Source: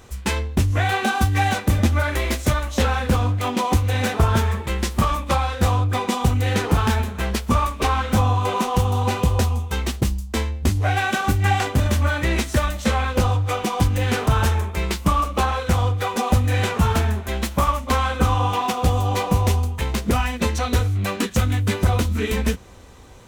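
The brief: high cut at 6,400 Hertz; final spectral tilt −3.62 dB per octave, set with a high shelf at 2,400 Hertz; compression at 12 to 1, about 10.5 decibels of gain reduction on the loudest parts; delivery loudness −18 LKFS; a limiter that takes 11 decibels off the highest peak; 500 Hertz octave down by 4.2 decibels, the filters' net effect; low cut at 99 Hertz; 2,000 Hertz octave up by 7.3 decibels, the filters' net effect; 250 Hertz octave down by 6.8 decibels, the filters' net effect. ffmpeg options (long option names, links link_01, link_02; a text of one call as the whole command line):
ffmpeg -i in.wav -af "highpass=99,lowpass=6400,equalizer=frequency=250:width_type=o:gain=-8,equalizer=frequency=500:width_type=o:gain=-3.5,equalizer=frequency=2000:width_type=o:gain=6.5,highshelf=frequency=2400:gain=7,acompressor=threshold=-25dB:ratio=12,volume=12.5dB,alimiter=limit=-9dB:level=0:latency=1" out.wav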